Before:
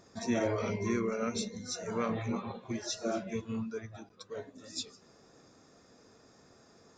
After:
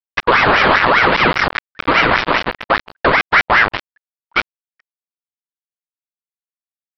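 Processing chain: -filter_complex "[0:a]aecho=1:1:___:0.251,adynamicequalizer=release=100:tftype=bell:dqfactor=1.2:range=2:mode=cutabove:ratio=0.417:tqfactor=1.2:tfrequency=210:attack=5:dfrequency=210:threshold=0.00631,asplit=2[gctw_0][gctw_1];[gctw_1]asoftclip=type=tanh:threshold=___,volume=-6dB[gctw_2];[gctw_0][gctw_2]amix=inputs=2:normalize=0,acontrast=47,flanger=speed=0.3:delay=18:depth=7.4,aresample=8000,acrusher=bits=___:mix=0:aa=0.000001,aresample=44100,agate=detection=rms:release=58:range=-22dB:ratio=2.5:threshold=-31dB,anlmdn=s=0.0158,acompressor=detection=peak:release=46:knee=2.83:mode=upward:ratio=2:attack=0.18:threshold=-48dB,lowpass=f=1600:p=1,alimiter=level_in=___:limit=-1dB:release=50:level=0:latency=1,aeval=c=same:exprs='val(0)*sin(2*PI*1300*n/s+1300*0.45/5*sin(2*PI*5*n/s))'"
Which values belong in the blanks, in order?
604, -37dB, 4, 20.5dB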